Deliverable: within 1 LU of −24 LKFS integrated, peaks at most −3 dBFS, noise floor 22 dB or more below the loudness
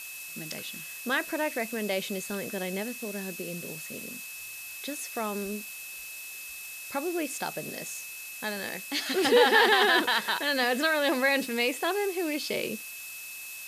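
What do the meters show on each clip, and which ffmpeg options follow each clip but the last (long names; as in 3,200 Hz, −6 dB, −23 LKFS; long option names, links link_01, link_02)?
interfering tone 2,600 Hz; level of the tone −42 dBFS; background noise floor −42 dBFS; target noise floor −51 dBFS; integrated loudness −29.0 LKFS; sample peak −7.5 dBFS; target loudness −24.0 LKFS
→ -af "bandreject=frequency=2600:width=30"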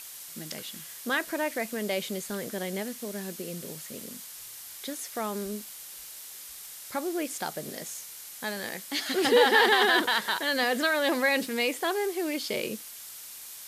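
interfering tone none found; background noise floor −44 dBFS; target noise floor −50 dBFS
→ -af "afftdn=noise_reduction=6:noise_floor=-44"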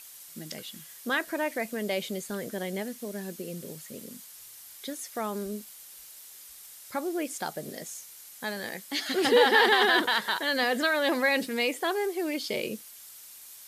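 background noise floor −48 dBFS; target noise floor −50 dBFS
→ -af "afftdn=noise_reduction=6:noise_floor=-48"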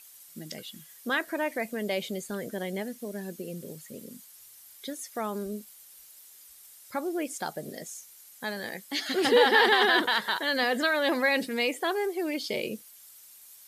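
background noise floor −52 dBFS; integrated loudness −27.5 LKFS; sample peak −7.5 dBFS; target loudness −24.0 LKFS
→ -af "volume=3.5dB"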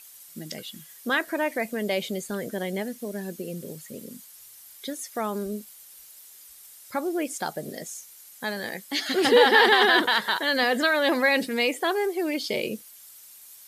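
integrated loudness −24.0 LKFS; sample peak −4.0 dBFS; background noise floor −49 dBFS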